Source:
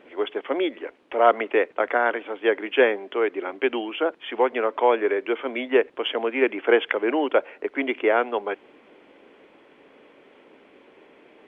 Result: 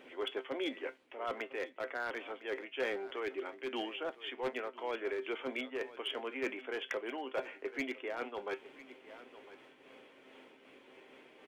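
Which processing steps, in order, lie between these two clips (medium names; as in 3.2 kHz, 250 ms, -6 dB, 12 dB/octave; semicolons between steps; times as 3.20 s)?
treble shelf 3.1 kHz +11 dB; reverse; compression 8:1, threshold -28 dBFS, peak gain reduction 17.5 dB; reverse; feedback comb 130 Hz, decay 0.16 s, harmonics all, mix 70%; hard clipper -29.5 dBFS, distortion -18 dB; delay 1005 ms -16 dB; random flutter of the level, depth 60%; trim +1.5 dB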